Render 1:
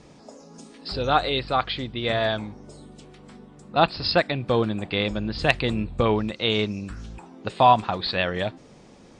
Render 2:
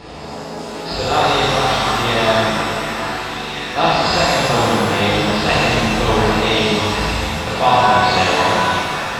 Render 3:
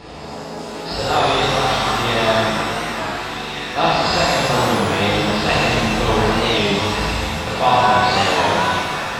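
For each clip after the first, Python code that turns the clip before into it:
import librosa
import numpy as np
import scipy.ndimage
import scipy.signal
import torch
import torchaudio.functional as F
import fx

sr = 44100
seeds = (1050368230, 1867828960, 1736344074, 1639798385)

y1 = fx.bin_compress(x, sr, power=0.6)
y1 = fx.echo_stepped(y1, sr, ms=730, hz=1200.0, octaves=0.7, feedback_pct=70, wet_db=-3)
y1 = fx.rev_shimmer(y1, sr, seeds[0], rt60_s=2.2, semitones=7, shimmer_db=-8, drr_db=-9.0)
y1 = y1 * 10.0 ** (-5.5 / 20.0)
y2 = fx.record_warp(y1, sr, rpm=33.33, depth_cents=100.0)
y2 = y2 * 10.0 ** (-1.5 / 20.0)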